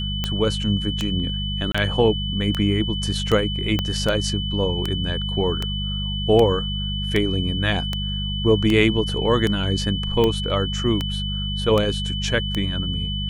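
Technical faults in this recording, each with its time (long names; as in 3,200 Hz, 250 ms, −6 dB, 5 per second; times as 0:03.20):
mains hum 50 Hz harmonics 4 −27 dBFS
scratch tick 78 rpm −9 dBFS
whistle 3,000 Hz −28 dBFS
0:01.72–0:01.75: drop-out 25 ms
0:03.79: click −9 dBFS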